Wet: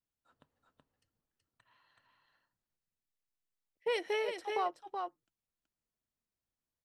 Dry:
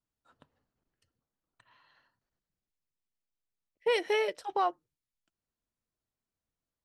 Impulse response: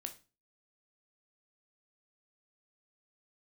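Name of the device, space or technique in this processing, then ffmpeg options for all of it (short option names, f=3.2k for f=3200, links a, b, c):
ducked delay: -filter_complex "[0:a]asplit=3[a][b][c];[b]adelay=376,volume=-2.5dB[d];[c]apad=whole_len=318372[e];[d][e]sidechaincompress=threshold=-30dB:ratio=8:attack=33:release=879[f];[a][f]amix=inputs=2:normalize=0,volume=-5.5dB"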